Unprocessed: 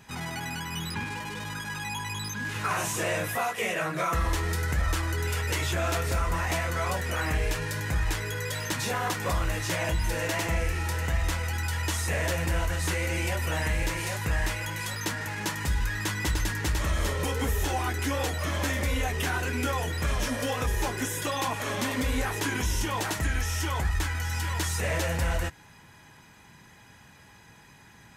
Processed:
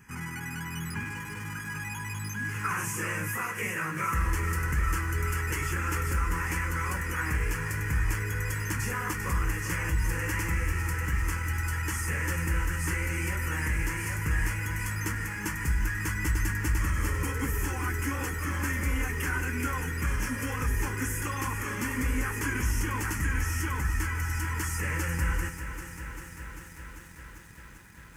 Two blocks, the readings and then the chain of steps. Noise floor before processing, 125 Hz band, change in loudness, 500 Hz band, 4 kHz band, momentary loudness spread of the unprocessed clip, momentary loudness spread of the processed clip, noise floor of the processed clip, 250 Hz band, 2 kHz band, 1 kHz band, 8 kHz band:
-53 dBFS, 0.0 dB, -1.5 dB, -8.5 dB, -9.5 dB, 4 LU, 7 LU, -45 dBFS, -1.0 dB, 0.0 dB, -3.5 dB, -2.0 dB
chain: fixed phaser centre 1600 Hz, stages 4; lo-fi delay 0.394 s, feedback 80%, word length 9-bit, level -10.5 dB

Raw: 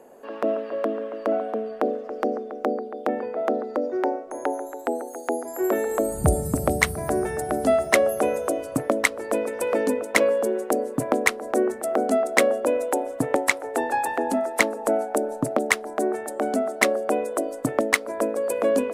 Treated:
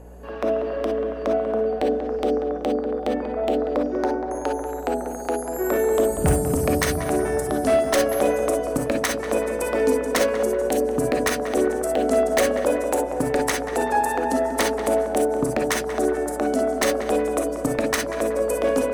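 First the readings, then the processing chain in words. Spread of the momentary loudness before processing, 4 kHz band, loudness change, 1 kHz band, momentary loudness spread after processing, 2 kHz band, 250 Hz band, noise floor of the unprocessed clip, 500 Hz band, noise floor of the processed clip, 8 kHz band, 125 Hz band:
8 LU, +2.5 dB, +1.5 dB, +1.5 dB, 5 LU, -3.0 dB, +2.5 dB, -37 dBFS, +2.5 dB, -30 dBFS, +2.0 dB, +2.0 dB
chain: bell 5700 Hz +3.5 dB 0.43 oct; hum 60 Hz, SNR 19 dB; wavefolder -13 dBFS; on a send: tape echo 0.189 s, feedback 66%, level -6 dB, low-pass 1500 Hz; on the sum: non-linear reverb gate 80 ms rising, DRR 3 dB

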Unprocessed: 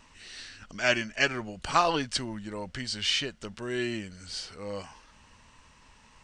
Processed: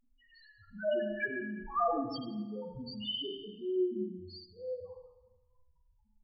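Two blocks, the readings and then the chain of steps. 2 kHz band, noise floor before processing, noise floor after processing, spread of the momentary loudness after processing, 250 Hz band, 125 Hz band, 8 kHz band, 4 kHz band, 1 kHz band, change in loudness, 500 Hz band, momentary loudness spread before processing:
-11.0 dB, -58 dBFS, -71 dBFS, 14 LU, -2.0 dB, -9.0 dB, under -40 dB, -10.0 dB, -6.5 dB, -6.0 dB, -1.5 dB, 17 LU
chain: sample leveller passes 1; loudest bins only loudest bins 1; spring tank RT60 1.1 s, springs 33/38/43 ms, chirp 45 ms, DRR 1.5 dB; gain -1.5 dB

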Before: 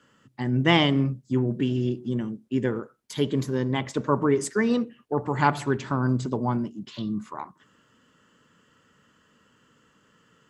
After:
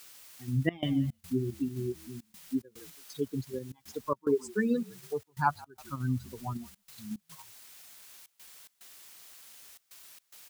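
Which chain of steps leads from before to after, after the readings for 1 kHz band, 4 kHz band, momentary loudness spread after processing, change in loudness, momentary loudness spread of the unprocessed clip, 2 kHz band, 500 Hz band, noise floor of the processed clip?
-8.0 dB, -15.5 dB, 21 LU, -8.0 dB, 11 LU, -10.5 dB, -8.0 dB, -75 dBFS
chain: per-bin expansion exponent 3; high shelf 3200 Hz -11.5 dB; on a send: frequency-shifting echo 0.164 s, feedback 31%, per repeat -49 Hz, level -23 dB; on the sum: requantised 10-bit, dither triangular; step gate "xxxxx.xx.xx" 109 bpm -24 dB; in parallel at -1.5 dB: level quantiser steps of 19 dB; on the sum: mismatched tape noise reduction encoder only; gain -2 dB

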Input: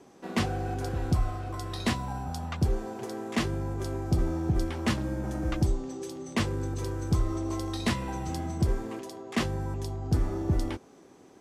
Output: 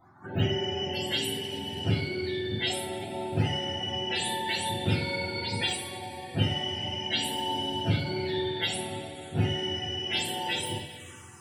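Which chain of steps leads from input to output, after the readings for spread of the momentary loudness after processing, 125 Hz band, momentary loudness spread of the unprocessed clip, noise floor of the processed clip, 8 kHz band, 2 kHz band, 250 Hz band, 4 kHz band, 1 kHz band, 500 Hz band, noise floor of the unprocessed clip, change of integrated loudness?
7 LU, -2.0 dB, 7 LU, -46 dBFS, +4.0 dB, +5.5 dB, -2.5 dB, +13.0 dB, +2.0 dB, +2.0 dB, -54 dBFS, +1.5 dB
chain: spectrum mirrored in octaves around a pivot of 540 Hz; two-slope reverb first 0.39 s, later 3.4 s, from -17 dB, DRR -4.5 dB; envelope phaser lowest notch 430 Hz, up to 1200 Hz, full sweep at -32 dBFS

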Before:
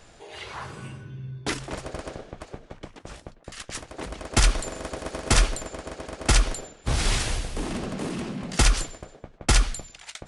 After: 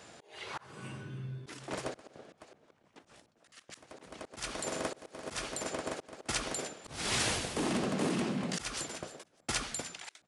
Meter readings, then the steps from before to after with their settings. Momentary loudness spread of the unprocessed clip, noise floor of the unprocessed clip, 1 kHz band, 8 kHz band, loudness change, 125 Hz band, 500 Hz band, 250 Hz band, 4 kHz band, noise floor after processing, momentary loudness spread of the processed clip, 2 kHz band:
20 LU, -53 dBFS, -7.5 dB, -8.5 dB, -9.0 dB, -13.5 dB, -5.0 dB, -4.5 dB, -8.5 dB, -71 dBFS, 18 LU, -8.0 dB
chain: HPF 150 Hz 12 dB/oct; frequency-shifting echo 0.302 s, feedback 40%, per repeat +130 Hz, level -22 dB; auto swell 0.42 s

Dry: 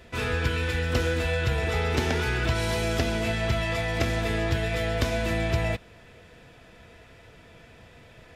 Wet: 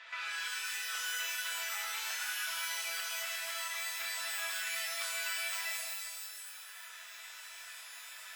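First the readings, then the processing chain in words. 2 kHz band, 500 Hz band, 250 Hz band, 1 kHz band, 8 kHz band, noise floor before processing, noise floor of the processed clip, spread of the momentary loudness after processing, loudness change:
-6.0 dB, -25.5 dB, under -40 dB, -11.0 dB, +4.0 dB, -52 dBFS, -50 dBFS, 12 LU, -9.5 dB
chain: reverb removal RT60 1.8 s; HPF 1100 Hz 24 dB/oct; compressor 10:1, threshold -46 dBFS, peak gain reduction 17.5 dB; air absorption 150 m; shimmer reverb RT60 2 s, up +12 st, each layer -2 dB, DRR -3 dB; gain +5.5 dB

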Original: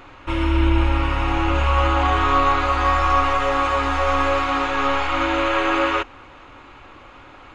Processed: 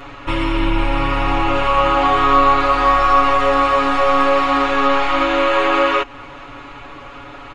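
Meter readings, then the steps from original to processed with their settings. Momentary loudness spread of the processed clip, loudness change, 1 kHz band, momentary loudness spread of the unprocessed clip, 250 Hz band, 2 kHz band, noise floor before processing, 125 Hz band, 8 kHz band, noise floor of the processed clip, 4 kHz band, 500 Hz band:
9 LU, +4.0 dB, +5.0 dB, 4 LU, +3.5 dB, +3.0 dB, -44 dBFS, -5.0 dB, n/a, -36 dBFS, +4.0 dB, +6.0 dB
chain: comb 7.1 ms, depth 89%; in parallel at +2 dB: compressor, threshold -25 dBFS, peak gain reduction 15 dB; on the sum: gain -1.5 dB

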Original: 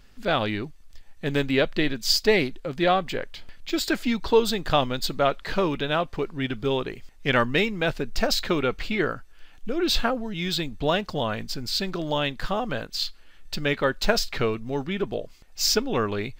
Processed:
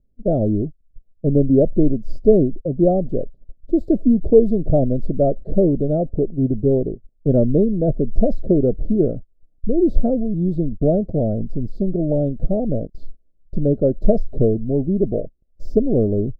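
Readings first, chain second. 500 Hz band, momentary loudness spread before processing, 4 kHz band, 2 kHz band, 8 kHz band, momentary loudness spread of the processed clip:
+7.5 dB, 9 LU, under -35 dB, under -40 dB, under -35 dB, 9 LU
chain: gate -34 dBFS, range -22 dB; elliptic low-pass 640 Hz, stop band 40 dB; low shelf 370 Hz +8 dB; gain +5 dB

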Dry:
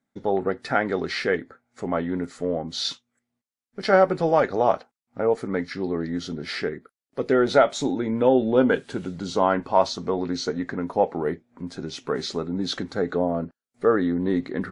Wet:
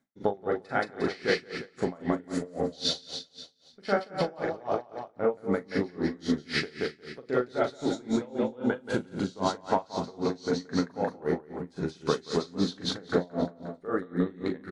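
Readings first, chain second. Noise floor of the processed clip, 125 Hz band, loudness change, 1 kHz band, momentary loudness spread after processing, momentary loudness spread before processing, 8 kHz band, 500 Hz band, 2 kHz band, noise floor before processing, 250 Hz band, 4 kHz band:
-58 dBFS, -3.5 dB, -6.5 dB, -8.0 dB, 6 LU, 13 LU, -4.0 dB, -7.5 dB, -5.0 dB, under -85 dBFS, -4.5 dB, -2.5 dB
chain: compressor 10:1, threshold -25 dBFS, peak gain reduction 14 dB; doubler 40 ms -6 dB; feedback echo 0.177 s, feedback 46%, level -4 dB; dB-linear tremolo 3.8 Hz, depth 26 dB; gain +4 dB

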